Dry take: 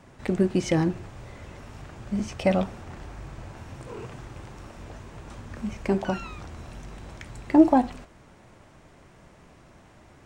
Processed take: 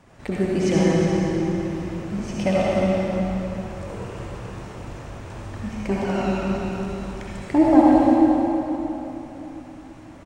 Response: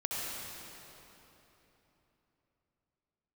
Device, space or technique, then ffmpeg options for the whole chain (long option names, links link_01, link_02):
cave: -filter_complex "[0:a]aecho=1:1:357:0.316[link_01];[1:a]atrim=start_sample=2205[link_02];[link_01][link_02]afir=irnorm=-1:irlink=0"